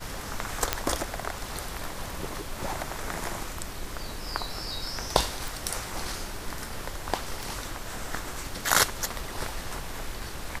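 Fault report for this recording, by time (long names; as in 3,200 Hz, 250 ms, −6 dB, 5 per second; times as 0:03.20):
0:00.73: click −5 dBFS
0:05.48: click
0:07.43: click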